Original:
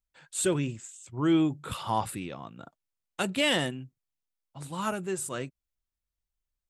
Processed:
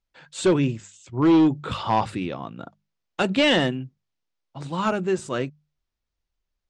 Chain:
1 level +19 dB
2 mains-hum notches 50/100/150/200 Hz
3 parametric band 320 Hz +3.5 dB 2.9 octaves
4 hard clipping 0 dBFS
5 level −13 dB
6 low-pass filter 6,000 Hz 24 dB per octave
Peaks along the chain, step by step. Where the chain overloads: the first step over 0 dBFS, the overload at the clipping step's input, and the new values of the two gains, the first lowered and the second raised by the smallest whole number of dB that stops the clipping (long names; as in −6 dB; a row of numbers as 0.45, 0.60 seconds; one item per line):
+5.5, +5.5, +7.0, 0.0, −13.0, −12.0 dBFS
step 1, 7.0 dB
step 1 +12 dB, step 5 −6 dB